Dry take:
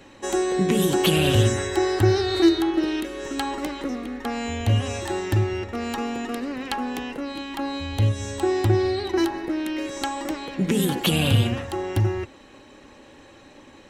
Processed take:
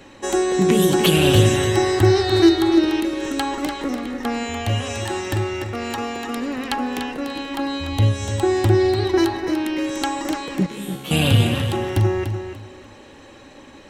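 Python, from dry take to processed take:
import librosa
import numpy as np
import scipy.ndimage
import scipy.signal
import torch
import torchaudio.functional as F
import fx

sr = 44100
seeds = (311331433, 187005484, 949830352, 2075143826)

y = fx.low_shelf(x, sr, hz=320.0, db=-6.5, at=(4.43, 6.36))
y = fx.comb_fb(y, sr, f0_hz=68.0, decay_s=0.77, harmonics='all', damping=0.0, mix_pct=100, at=(10.66, 11.11))
y = fx.echo_feedback(y, sr, ms=293, feedback_pct=22, wet_db=-8.0)
y = y * 10.0 ** (3.5 / 20.0)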